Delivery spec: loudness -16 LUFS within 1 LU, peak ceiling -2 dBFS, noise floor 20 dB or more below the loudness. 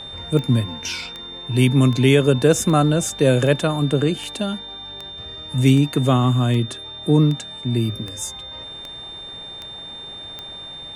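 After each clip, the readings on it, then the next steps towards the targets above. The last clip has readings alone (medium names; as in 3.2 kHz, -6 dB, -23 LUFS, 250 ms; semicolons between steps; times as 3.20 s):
clicks found 14; steady tone 3.6 kHz; tone level -33 dBFS; loudness -19.0 LUFS; peak level -3.0 dBFS; loudness target -16.0 LUFS
-> de-click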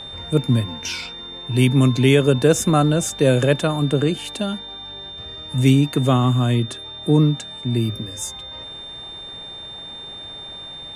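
clicks found 0; steady tone 3.6 kHz; tone level -33 dBFS
-> band-stop 3.6 kHz, Q 30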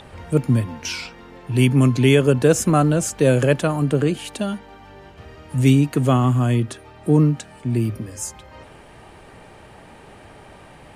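steady tone not found; loudness -19.0 LUFS; peak level -3.5 dBFS; loudness target -16.0 LUFS
-> trim +3 dB; peak limiter -2 dBFS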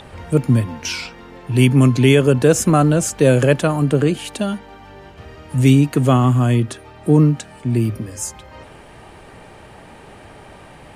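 loudness -16.5 LUFS; peak level -2.0 dBFS; noise floor -42 dBFS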